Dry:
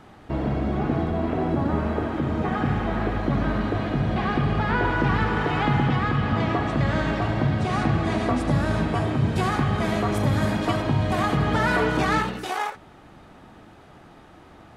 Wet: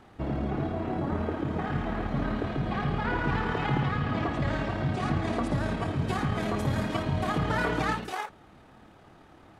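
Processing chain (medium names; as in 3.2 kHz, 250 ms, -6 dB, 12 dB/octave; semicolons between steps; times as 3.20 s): granular stretch 0.65×, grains 55 ms; trim -4.5 dB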